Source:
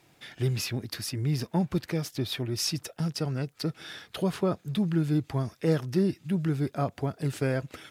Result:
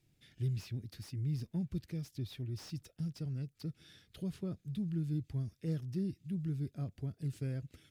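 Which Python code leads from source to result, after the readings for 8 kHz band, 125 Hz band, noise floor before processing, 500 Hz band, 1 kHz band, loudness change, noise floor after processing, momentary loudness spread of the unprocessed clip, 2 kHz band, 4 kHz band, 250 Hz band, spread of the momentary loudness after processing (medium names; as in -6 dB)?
-20.0 dB, -7.5 dB, -63 dBFS, -18.0 dB, under -20 dB, -10.0 dB, -75 dBFS, 6 LU, -20.0 dB, -18.5 dB, -10.5 dB, 7 LU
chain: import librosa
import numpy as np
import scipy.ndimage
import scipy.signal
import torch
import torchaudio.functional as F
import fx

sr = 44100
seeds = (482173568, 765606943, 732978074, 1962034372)

y = fx.tone_stack(x, sr, knobs='10-0-1')
y = fx.slew_limit(y, sr, full_power_hz=8.2)
y = y * librosa.db_to_amplitude(6.0)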